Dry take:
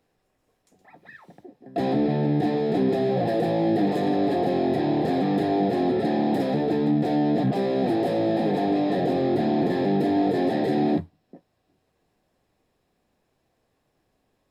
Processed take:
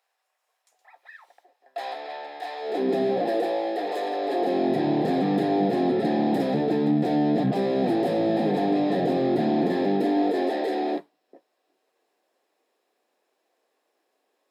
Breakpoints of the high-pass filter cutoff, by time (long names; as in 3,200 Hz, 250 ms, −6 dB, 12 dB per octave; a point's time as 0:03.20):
high-pass filter 24 dB per octave
0:02.57 710 Hz
0:02.99 170 Hz
0:03.62 440 Hz
0:04.22 440 Hz
0:04.79 130 Hz
0:09.42 130 Hz
0:10.64 350 Hz